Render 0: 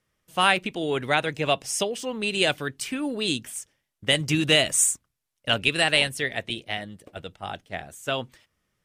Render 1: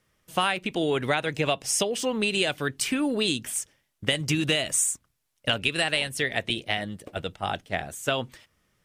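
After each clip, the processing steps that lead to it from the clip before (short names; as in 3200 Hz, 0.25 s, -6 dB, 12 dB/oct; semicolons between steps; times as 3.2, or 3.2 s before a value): compressor 6:1, threshold -27 dBFS, peak gain reduction 12.5 dB; gain +5.5 dB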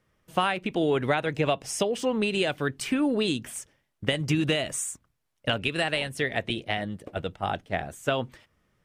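high shelf 2700 Hz -10 dB; gain +1.5 dB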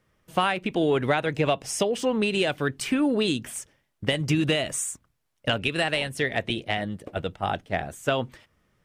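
soft clip -9.5 dBFS, distortion -29 dB; gain +2 dB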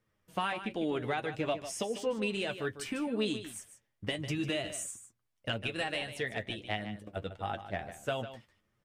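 flange 1.6 Hz, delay 8.6 ms, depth 1.9 ms, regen +35%; on a send: echo 0.15 s -11.5 dB; on the sum: gain -6 dB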